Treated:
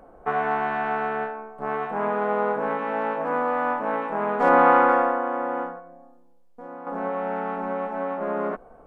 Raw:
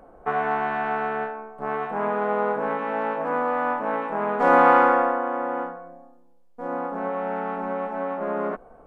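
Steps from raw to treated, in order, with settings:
0:04.49–0:04.89: high-frequency loss of the air 160 metres
0:05.79–0:06.87: downward compressor 2 to 1, threshold −44 dBFS, peak gain reduction 10.5 dB

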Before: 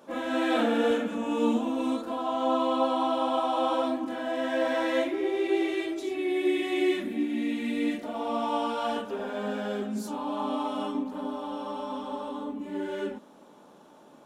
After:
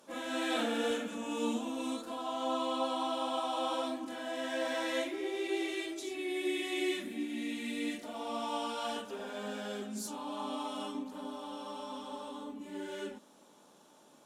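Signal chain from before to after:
parametric band 8,300 Hz +13 dB 2.7 octaves
level −9 dB

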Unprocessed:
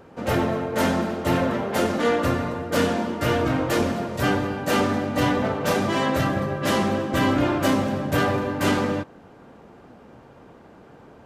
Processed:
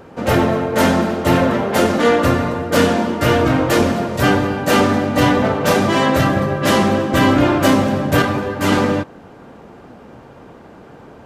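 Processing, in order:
0:08.22–0:08.72: string-ensemble chorus
level +7.5 dB

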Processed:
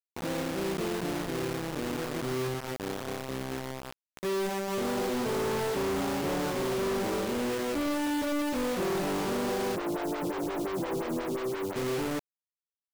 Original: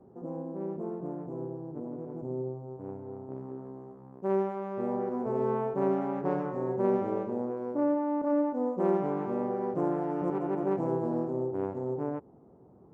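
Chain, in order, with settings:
log-companded quantiser 2 bits
0:09.76–0:11.76: phaser with staggered stages 5.7 Hz
level −3.5 dB

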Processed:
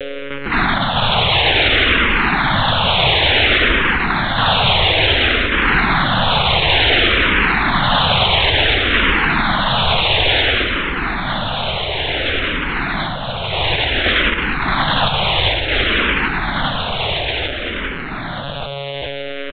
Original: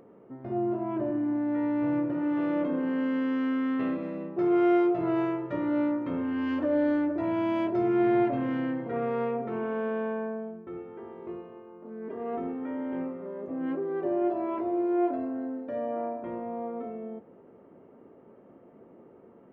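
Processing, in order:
samples sorted by size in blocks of 64 samples
time-frequency box erased 0:12.19–0:15.13, 410–1,200 Hz
cochlear-implant simulation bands 1
steady tone 510 Hz −42 dBFS
repeating echo 1,193 ms, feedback 59%, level −7 dB
one-pitch LPC vocoder at 8 kHz 140 Hz
boost into a limiter +22 dB
frequency shifter mixed with the dry sound −0.57 Hz
level −1 dB

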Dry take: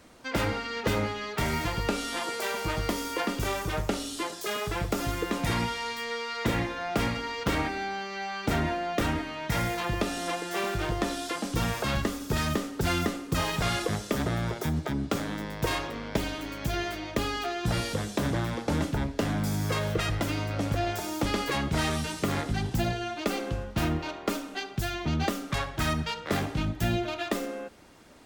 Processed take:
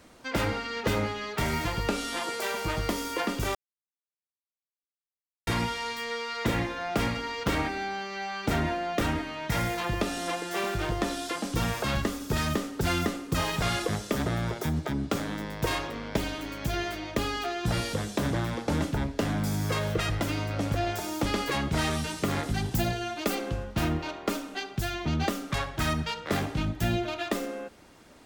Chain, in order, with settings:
0:03.55–0:05.47: silence
0:22.43–0:23.35: high-shelf EQ 8,700 Hz +9.5 dB

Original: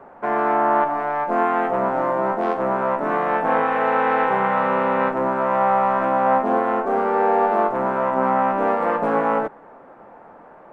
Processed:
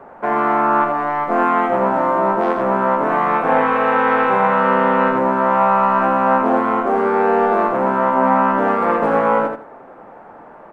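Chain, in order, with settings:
repeating echo 81 ms, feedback 22%, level −5 dB
level +3.5 dB

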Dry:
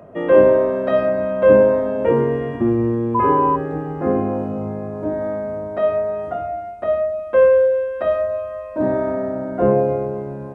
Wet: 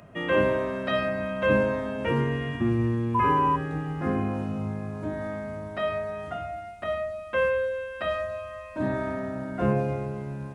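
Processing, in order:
drawn EQ curve 150 Hz 0 dB, 500 Hz −12 dB, 2,900 Hz +8 dB
level −1.5 dB

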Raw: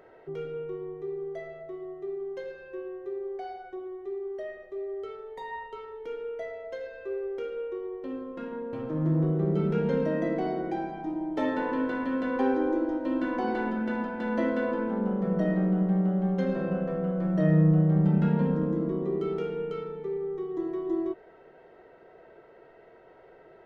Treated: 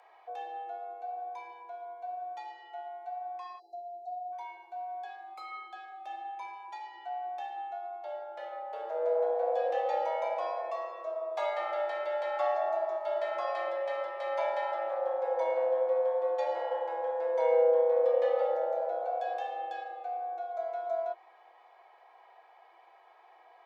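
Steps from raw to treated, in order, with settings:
frequency shifter +330 Hz
time-frequency box erased 0:03.59–0:04.32, 860–3,800 Hz
octave-band graphic EQ 250/1,000/2,000 Hz −12/−5/−4 dB

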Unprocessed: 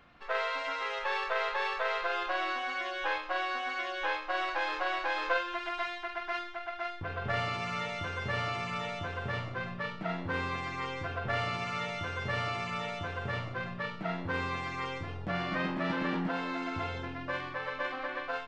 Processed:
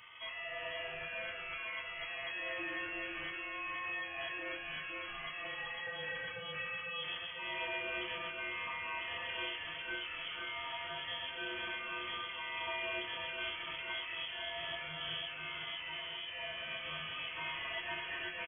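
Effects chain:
rippled gain that drifts along the octave scale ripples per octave 1.2, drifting +0.58 Hz, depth 13 dB
0:07.38–0:09.56: high-pass filter 220 Hz 6 dB per octave
compressor whose output falls as the input rises −38 dBFS, ratio −1
soft clipping −39 dBFS, distortion −9 dB
repeating echo 498 ms, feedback 55%, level −6 dB
feedback delay network reverb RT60 0.3 s, low-frequency decay 0.7×, high-frequency decay 1×, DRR −2 dB
voice inversion scrambler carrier 3,300 Hz
level −4 dB

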